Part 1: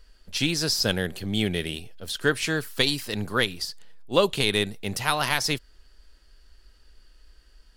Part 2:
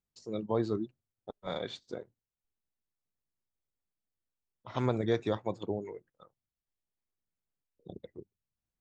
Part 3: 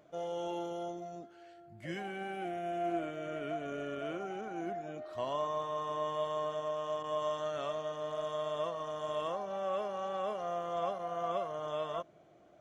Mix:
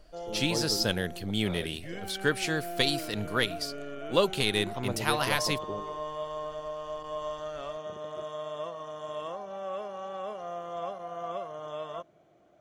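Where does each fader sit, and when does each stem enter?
-4.0, -4.5, -1.0 dB; 0.00, 0.00, 0.00 s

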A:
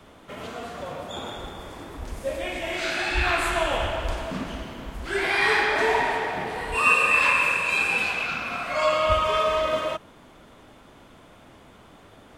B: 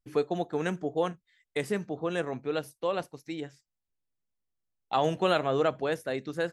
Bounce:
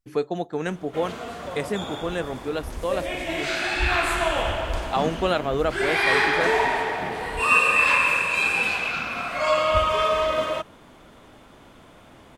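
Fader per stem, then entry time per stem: +1.0, +2.5 dB; 0.65, 0.00 s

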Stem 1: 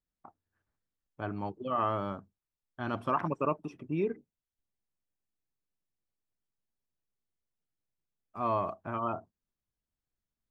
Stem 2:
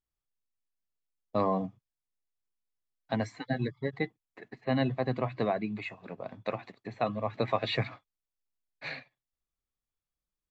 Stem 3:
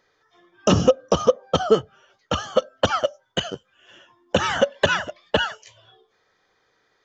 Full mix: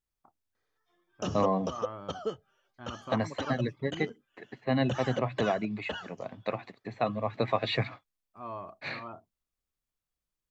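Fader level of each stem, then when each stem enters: -10.0, +1.0, -17.0 dB; 0.00, 0.00, 0.55 s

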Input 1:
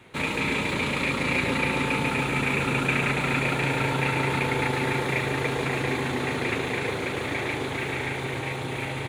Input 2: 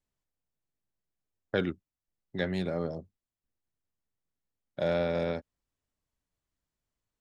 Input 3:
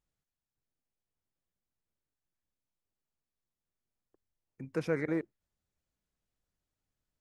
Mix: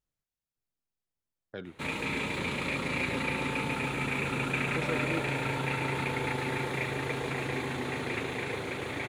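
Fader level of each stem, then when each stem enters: -6.5, -12.5, -3.5 dB; 1.65, 0.00, 0.00 s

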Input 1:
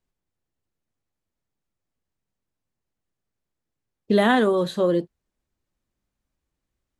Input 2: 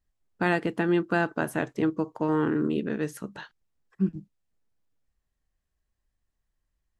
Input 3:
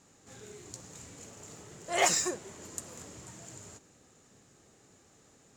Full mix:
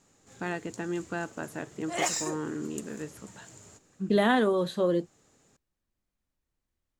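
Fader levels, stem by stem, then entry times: -5.0, -9.0, -3.0 dB; 0.00, 0.00, 0.00 s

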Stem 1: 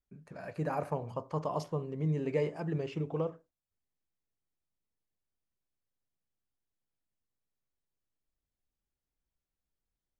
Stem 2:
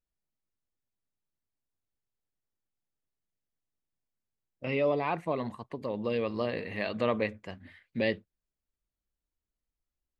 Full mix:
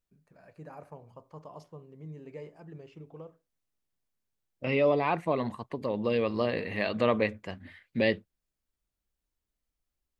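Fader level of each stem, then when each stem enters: -12.5, +3.0 dB; 0.00, 0.00 s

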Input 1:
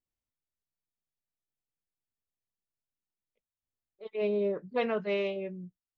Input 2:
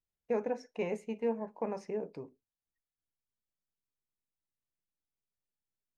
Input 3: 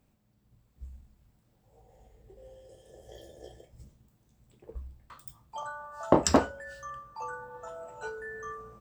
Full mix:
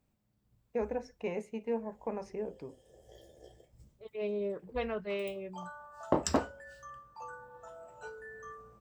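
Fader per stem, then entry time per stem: -5.5, -1.5, -7.0 dB; 0.00, 0.45, 0.00 s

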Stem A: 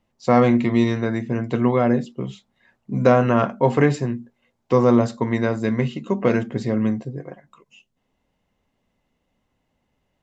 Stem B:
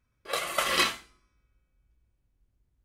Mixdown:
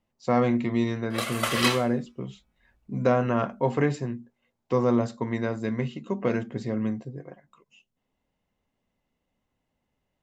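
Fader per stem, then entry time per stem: -7.0, 0.0 dB; 0.00, 0.85 s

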